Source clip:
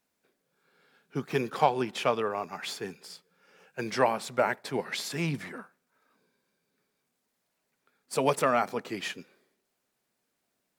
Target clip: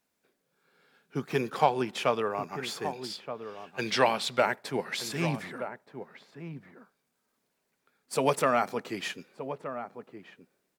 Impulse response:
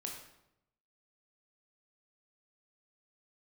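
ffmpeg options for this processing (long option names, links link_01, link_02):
-filter_complex "[0:a]asettb=1/sr,asplit=3[link_01][link_02][link_03];[link_01]atrim=end=2.934[link_04];[link_02]atrim=start=2.93:end=4.46,asetpts=PTS-STARTPTS,afade=type=in:duration=0.004:curve=qsin,afade=type=out:start_time=1.526:duration=0.004:curve=qsin,equalizer=frequency=3500:width_type=o:width=1.1:gain=12[link_05];[link_03]atrim=start=4.456[link_06];[link_04][link_05]acrossfade=duration=0.004:curve1=hsin:curve2=qsin[link_07];[link_07][link_06]acrossfade=duration=0.004:curve1=qsin:curve2=hsin,asplit=2[link_08][link_09];[link_09]adelay=1224,volume=-10dB,highshelf=frequency=4000:gain=-27.6[link_10];[link_08][link_10]amix=inputs=2:normalize=0"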